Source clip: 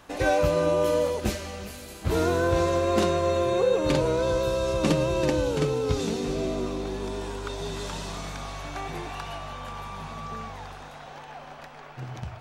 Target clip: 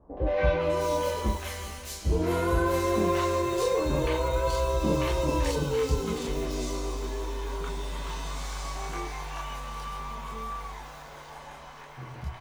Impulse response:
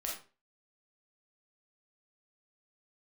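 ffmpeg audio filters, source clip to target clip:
-filter_complex "[1:a]atrim=start_sample=2205,atrim=end_sample=3528,asetrate=70560,aresample=44100[link_01];[0:a][link_01]afir=irnorm=-1:irlink=0,acrusher=bits=7:mode=log:mix=0:aa=0.000001,acrossover=split=770|3600[link_02][link_03][link_04];[link_03]adelay=170[link_05];[link_04]adelay=600[link_06];[link_02][link_05][link_06]amix=inputs=3:normalize=0,volume=3.5dB"

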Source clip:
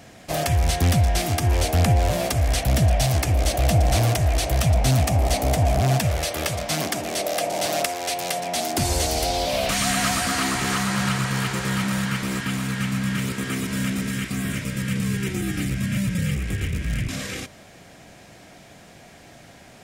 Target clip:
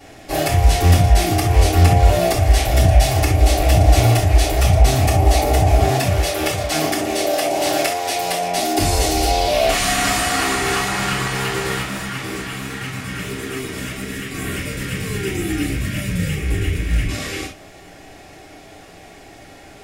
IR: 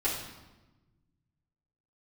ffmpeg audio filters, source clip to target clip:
-filter_complex "[0:a]asplit=3[link_01][link_02][link_03];[link_01]afade=type=out:start_time=11.79:duration=0.02[link_04];[link_02]flanger=delay=7.5:depth=9.4:regen=-17:speed=1.4:shape=sinusoidal,afade=type=in:start_time=11.79:duration=0.02,afade=type=out:start_time=14.33:duration=0.02[link_05];[link_03]afade=type=in:start_time=14.33:duration=0.02[link_06];[link_04][link_05][link_06]amix=inputs=3:normalize=0[link_07];[1:a]atrim=start_sample=2205,afade=type=out:start_time=0.13:duration=0.01,atrim=end_sample=6174[link_08];[link_07][link_08]afir=irnorm=-1:irlink=0,volume=-1.5dB"

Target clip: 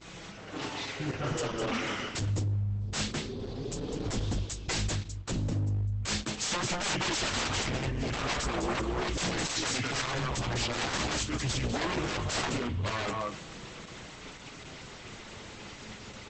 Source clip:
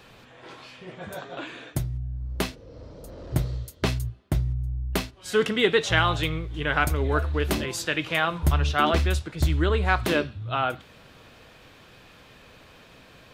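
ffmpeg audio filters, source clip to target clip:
ffmpeg -i in.wav -filter_complex "[0:a]asplit=2[link_01][link_02];[link_02]acompressor=threshold=-34dB:ratio=12,volume=3dB[link_03];[link_01][link_03]amix=inputs=2:normalize=0,asplit=2[link_04][link_05];[link_05]adelay=169.1,volume=-9dB,highshelf=frequency=4000:gain=-3.8[link_06];[link_04][link_06]amix=inputs=2:normalize=0,asetrate=36074,aresample=44100,acrossover=split=160[link_07][link_08];[link_08]acontrast=83[link_09];[link_07][link_09]amix=inputs=2:normalize=0,bass=frequency=250:gain=9,treble=frequency=4000:gain=12,agate=range=-33dB:threshold=-30dB:ratio=3:detection=peak,lowshelf=frequency=110:gain=-5.5,flanger=delay=6:depth=3.5:regen=-18:speed=0.22:shape=sinusoidal,aeval=exprs='0.1*(abs(mod(val(0)/0.1+3,4)-2)-1)':channel_layout=same,aeval=exprs='val(0)+0.00224*(sin(2*PI*60*n/s)+sin(2*PI*2*60*n/s)/2+sin(2*PI*3*60*n/s)/3+sin(2*PI*4*60*n/s)/4+sin(2*PI*5*60*n/s)/5)':channel_layout=same,volume=-5dB" -ar 48000 -c:a libopus -b:a 10k out.opus

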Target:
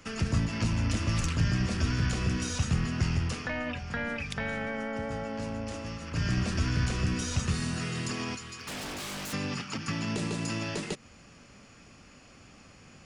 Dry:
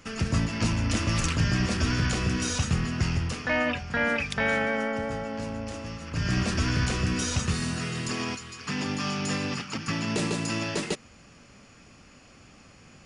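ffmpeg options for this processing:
ffmpeg -i in.wav -filter_complex "[0:a]asplit=3[link_01][link_02][link_03];[link_01]afade=type=out:start_time=8.44:duration=0.02[link_04];[link_02]aeval=exprs='0.0266*(abs(mod(val(0)/0.0266+3,4)-2)-1)':channel_layout=same,afade=type=in:start_time=8.44:duration=0.02,afade=type=out:start_time=9.32:duration=0.02[link_05];[link_03]afade=type=in:start_time=9.32:duration=0.02[link_06];[link_04][link_05][link_06]amix=inputs=3:normalize=0,aeval=exprs='0.266*(cos(1*acos(clip(val(0)/0.266,-1,1)))-cos(1*PI/2))+0.0422*(cos(2*acos(clip(val(0)/0.266,-1,1)))-cos(2*PI/2))+0.00376*(cos(4*acos(clip(val(0)/0.266,-1,1)))-cos(4*PI/2))':channel_layout=same,acrossover=split=190[link_07][link_08];[link_08]acompressor=threshold=-31dB:ratio=6[link_09];[link_07][link_09]amix=inputs=2:normalize=0,volume=-1dB" out.wav

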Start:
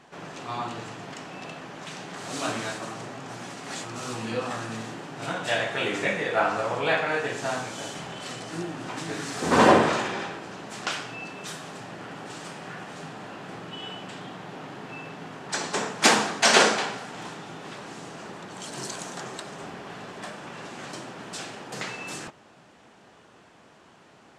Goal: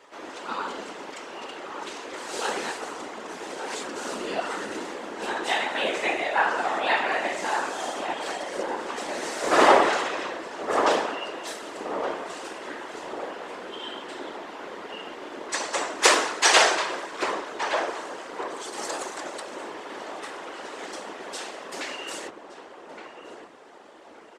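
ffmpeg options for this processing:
ffmpeg -i in.wav -filter_complex "[0:a]asplit=2[link_01][link_02];[link_02]adelay=1169,lowpass=frequency=970:poles=1,volume=-5dB,asplit=2[link_03][link_04];[link_04]adelay=1169,lowpass=frequency=970:poles=1,volume=0.52,asplit=2[link_05][link_06];[link_06]adelay=1169,lowpass=frequency=970:poles=1,volume=0.52,asplit=2[link_07][link_08];[link_08]adelay=1169,lowpass=frequency=970:poles=1,volume=0.52,asplit=2[link_09][link_10];[link_10]adelay=1169,lowpass=frequency=970:poles=1,volume=0.52,asplit=2[link_11][link_12];[link_12]adelay=1169,lowpass=frequency=970:poles=1,volume=0.52,asplit=2[link_13][link_14];[link_14]adelay=1169,lowpass=frequency=970:poles=1,volume=0.52[link_15];[link_01][link_03][link_05][link_07][link_09][link_11][link_13][link_15]amix=inputs=8:normalize=0,afreqshift=180,afftfilt=real='hypot(re,im)*cos(2*PI*random(0))':imag='hypot(re,im)*sin(2*PI*random(1))':win_size=512:overlap=0.75,volume=6.5dB" out.wav

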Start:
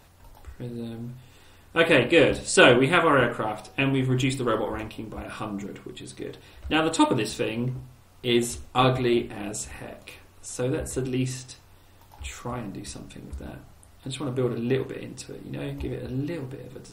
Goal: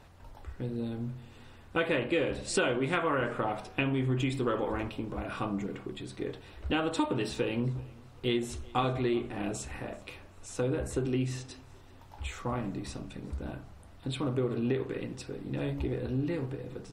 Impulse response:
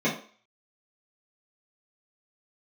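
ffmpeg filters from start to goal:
-af "aemphasis=mode=reproduction:type=50kf,acompressor=threshold=-26dB:ratio=6,aecho=1:1:386|772:0.0631|0.0233"

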